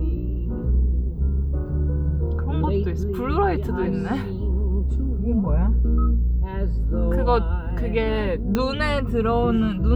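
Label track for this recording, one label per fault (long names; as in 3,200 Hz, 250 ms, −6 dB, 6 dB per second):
8.550000	8.550000	click −9 dBFS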